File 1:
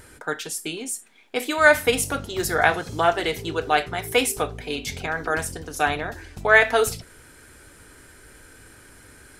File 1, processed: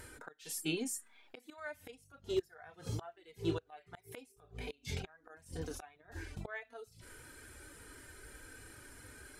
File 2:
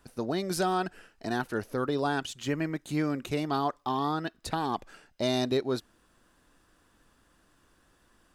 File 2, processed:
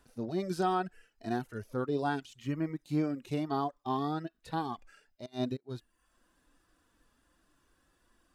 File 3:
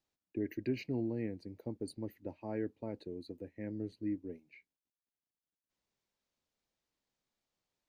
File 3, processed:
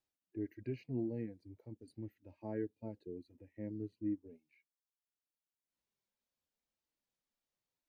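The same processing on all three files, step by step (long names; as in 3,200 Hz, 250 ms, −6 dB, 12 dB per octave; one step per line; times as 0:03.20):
gate with flip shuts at −16 dBFS, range −29 dB
harmonic and percussive parts rebalanced percussive −17 dB
reverb reduction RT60 0.61 s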